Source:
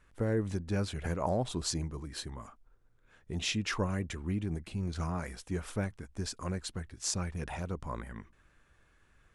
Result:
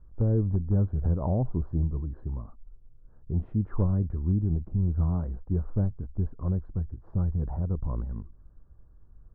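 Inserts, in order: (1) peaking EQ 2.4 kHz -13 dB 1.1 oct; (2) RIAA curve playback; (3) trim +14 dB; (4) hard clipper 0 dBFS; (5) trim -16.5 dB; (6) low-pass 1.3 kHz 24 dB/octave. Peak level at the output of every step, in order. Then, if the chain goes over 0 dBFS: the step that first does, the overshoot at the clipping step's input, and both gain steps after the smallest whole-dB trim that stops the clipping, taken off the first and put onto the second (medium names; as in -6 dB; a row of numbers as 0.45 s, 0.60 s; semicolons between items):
-17.0 dBFS, -11.0 dBFS, +3.0 dBFS, 0.0 dBFS, -16.5 dBFS, -16.5 dBFS; step 3, 3.0 dB; step 3 +11 dB, step 5 -13.5 dB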